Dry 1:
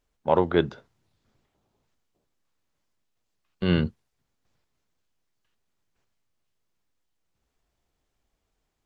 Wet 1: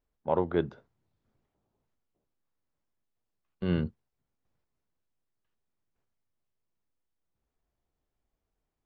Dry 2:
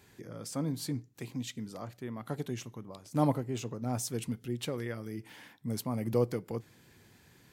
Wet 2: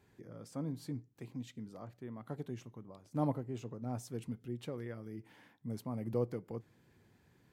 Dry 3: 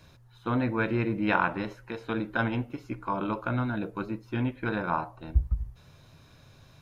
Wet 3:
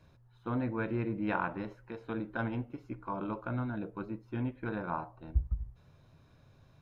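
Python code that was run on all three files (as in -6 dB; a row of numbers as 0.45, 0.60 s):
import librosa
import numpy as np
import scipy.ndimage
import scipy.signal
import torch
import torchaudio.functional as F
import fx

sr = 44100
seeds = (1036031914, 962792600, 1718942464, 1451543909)

y = fx.high_shelf(x, sr, hz=2100.0, db=-10.5)
y = y * librosa.db_to_amplitude(-5.5)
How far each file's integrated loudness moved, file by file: -6.0, -6.0, -6.5 LU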